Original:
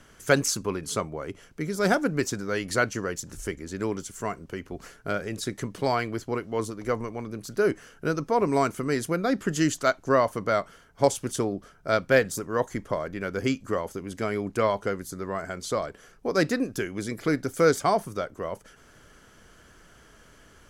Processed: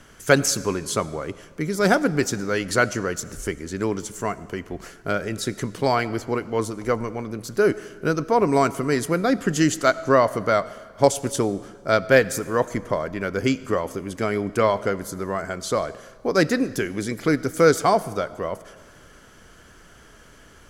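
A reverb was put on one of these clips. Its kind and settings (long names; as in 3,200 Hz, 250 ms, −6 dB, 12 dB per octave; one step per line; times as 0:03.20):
comb and all-pass reverb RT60 1.7 s, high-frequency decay 0.9×, pre-delay 45 ms, DRR 17.5 dB
level +4.5 dB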